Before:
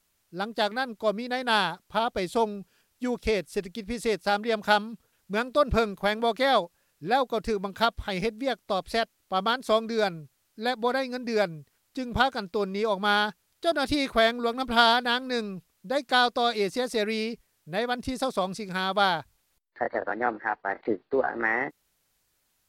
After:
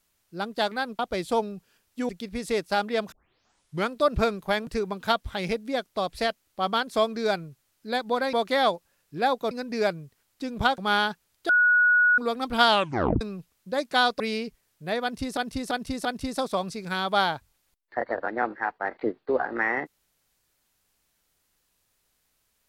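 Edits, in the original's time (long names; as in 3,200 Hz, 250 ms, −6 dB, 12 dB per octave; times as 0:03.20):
0:00.99–0:02.03: remove
0:03.13–0:03.64: remove
0:04.67: tape start 0.77 s
0:06.22–0:07.40: move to 0:11.06
0:12.33–0:12.96: remove
0:13.67–0:14.36: beep over 1,460 Hz −16 dBFS
0:14.87: tape stop 0.52 s
0:16.38–0:17.06: remove
0:17.89–0:18.23: repeat, 4 plays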